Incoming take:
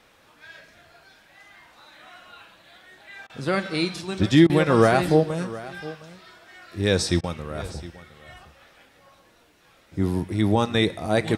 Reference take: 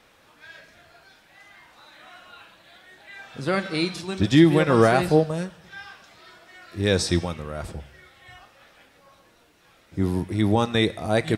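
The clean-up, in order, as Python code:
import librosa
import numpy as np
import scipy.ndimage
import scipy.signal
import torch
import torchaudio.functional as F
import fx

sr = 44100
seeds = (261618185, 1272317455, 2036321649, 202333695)

y = fx.fix_interpolate(x, sr, at_s=(3.27, 4.47, 7.21), length_ms=25.0)
y = fx.fix_echo_inverse(y, sr, delay_ms=713, level_db=-17.5)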